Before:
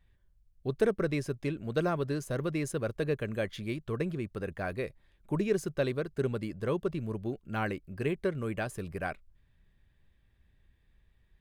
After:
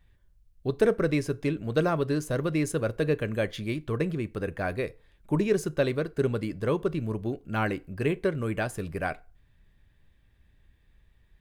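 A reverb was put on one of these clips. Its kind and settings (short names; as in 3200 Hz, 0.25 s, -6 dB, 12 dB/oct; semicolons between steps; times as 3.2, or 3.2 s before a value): FDN reverb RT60 0.34 s, low-frequency decay 0.8×, high-frequency decay 0.75×, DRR 14.5 dB; gain +4.5 dB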